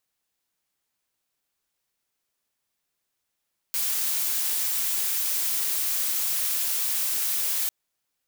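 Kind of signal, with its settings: noise blue, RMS -26 dBFS 3.95 s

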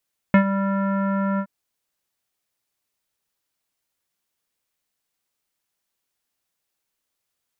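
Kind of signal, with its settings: synth note square G3 24 dB/oct, low-pass 1500 Hz, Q 2.1, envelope 0.5 oct, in 0.13 s, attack 1.8 ms, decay 0.09 s, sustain -11.5 dB, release 0.07 s, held 1.05 s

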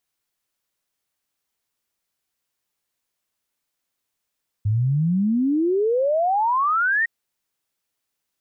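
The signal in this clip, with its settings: log sweep 100 Hz -> 1900 Hz 2.41 s -17 dBFS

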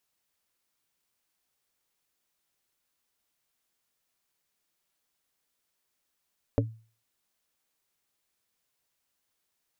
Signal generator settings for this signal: wood hit plate, lowest mode 112 Hz, modes 4, decay 0.39 s, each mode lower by 0 dB, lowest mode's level -21 dB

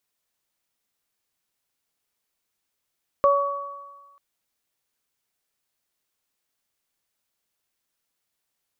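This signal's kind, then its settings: additive tone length 0.94 s, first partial 564 Hz, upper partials -1 dB, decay 1.03 s, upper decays 1.50 s, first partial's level -15 dB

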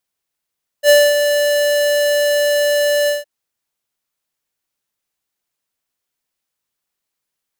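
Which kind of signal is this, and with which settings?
ADSR square 584 Hz, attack 65 ms, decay 0.238 s, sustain -7.5 dB, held 2.25 s, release 0.163 s -7.5 dBFS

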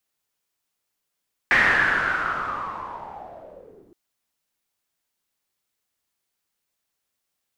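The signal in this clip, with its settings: swept filtered noise white, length 2.42 s lowpass, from 1900 Hz, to 310 Hz, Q 7.8, linear, gain ramp -28 dB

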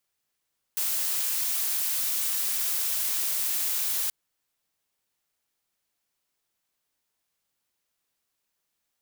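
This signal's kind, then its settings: noise blue, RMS -27.5 dBFS 3.33 s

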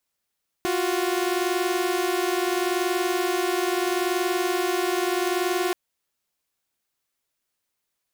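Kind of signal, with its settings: chord F4/F#4 saw, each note -22.5 dBFS 5.08 s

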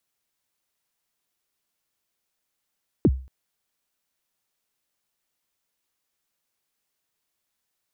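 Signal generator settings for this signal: kick drum length 0.23 s, from 410 Hz, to 65 Hz, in 47 ms, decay 0.38 s, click off, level -10.5 dB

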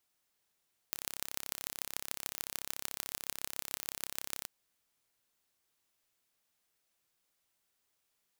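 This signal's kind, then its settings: pulse train 33.8/s, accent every 5, -7 dBFS 3.54 s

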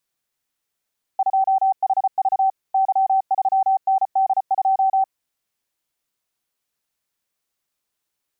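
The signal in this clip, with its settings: Morse "2HV Y3ND2" 34 wpm 770 Hz -14 dBFS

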